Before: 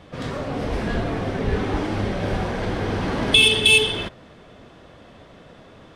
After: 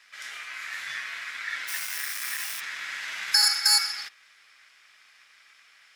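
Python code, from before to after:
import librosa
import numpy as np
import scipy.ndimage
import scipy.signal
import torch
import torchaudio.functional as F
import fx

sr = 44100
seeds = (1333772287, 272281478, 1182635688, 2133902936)

y = x * np.sin(2.0 * np.pi * 1800.0 * np.arange(len(x)) / sr)
y = fx.sample_gate(y, sr, floor_db=-27.5, at=(1.67, 2.59), fade=0.02)
y = F.preemphasis(torch.from_numpy(y), 0.97).numpy()
y = y * librosa.db_to_amplitude(3.0)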